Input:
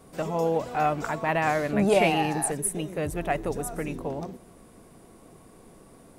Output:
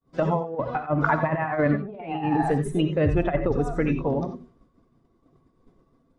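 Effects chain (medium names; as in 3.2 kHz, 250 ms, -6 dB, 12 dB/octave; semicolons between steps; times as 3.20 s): expander on every frequency bin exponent 1.5; low-pass 3 kHz 12 dB/octave; low-pass that closes with the level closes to 1.9 kHz, closed at -25 dBFS; compressor with a negative ratio -32 dBFS, ratio -0.5; expander -55 dBFS; gated-style reverb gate 110 ms rising, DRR 7.5 dB; trim +9 dB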